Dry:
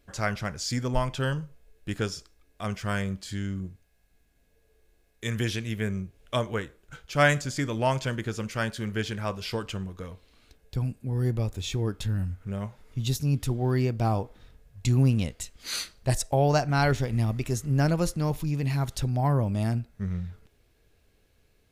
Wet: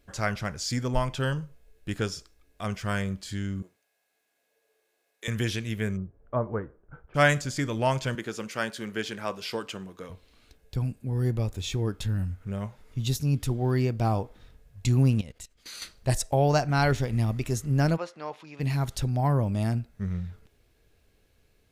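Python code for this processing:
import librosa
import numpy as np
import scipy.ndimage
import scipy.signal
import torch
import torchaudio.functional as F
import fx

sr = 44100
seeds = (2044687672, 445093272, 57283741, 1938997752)

y = fx.cheby1_highpass(x, sr, hz=580.0, order=2, at=(3.62, 5.28))
y = fx.lowpass(y, sr, hz=1300.0, slope=24, at=(5.96, 7.14), fade=0.02)
y = fx.highpass(y, sr, hz=220.0, slope=12, at=(8.15, 10.1))
y = fx.level_steps(y, sr, step_db=21, at=(15.21, 15.82))
y = fx.bandpass_edges(y, sr, low_hz=610.0, high_hz=fx.line((17.96, 2500.0), (18.59, 3500.0)), at=(17.96, 18.59), fade=0.02)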